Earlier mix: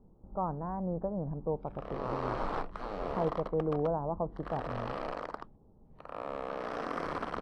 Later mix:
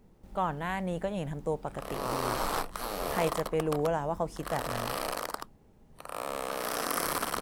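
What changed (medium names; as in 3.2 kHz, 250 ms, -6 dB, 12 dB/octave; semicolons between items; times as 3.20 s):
speech: remove steep low-pass 1.2 kHz 36 dB/octave; master: remove tape spacing loss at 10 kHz 37 dB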